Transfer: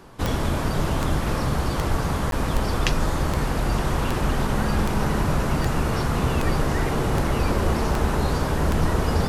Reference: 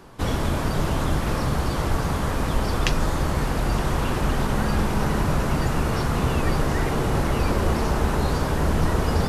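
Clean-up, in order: de-click; interpolate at 2.31, 12 ms

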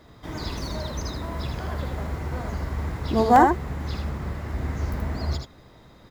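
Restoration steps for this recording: interpolate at 3.36, 2 ms; inverse comb 79 ms -5 dB

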